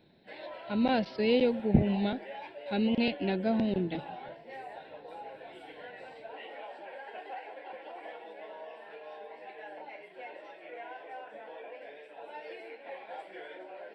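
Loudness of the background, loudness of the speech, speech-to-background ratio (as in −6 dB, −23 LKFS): −45.5 LKFS, −29.5 LKFS, 16.0 dB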